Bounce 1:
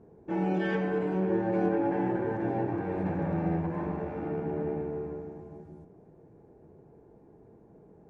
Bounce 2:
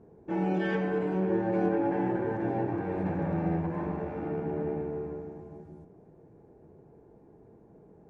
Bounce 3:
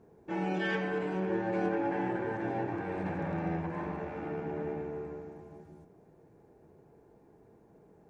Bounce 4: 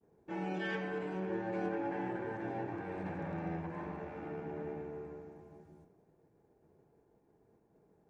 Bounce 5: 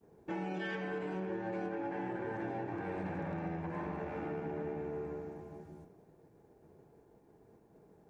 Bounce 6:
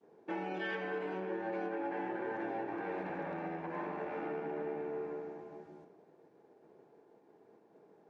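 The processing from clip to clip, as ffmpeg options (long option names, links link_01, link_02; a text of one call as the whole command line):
ffmpeg -i in.wav -af anull out.wav
ffmpeg -i in.wav -af "tiltshelf=frequency=1100:gain=-5.5" out.wav
ffmpeg -i in.wav -af "agate=range=-33dB:threshold=-55dB:ratio=3:detection=peak,volume=-5.5dB" out.wav
ffmpeg -i in.wav -af "acompressor=threshold=-42dB:ratio=6,volume=6.5dB" out.wav
ffmpeg -i in.wav -af "highpass=290,lowpass=4500,volume=2dB" out.wav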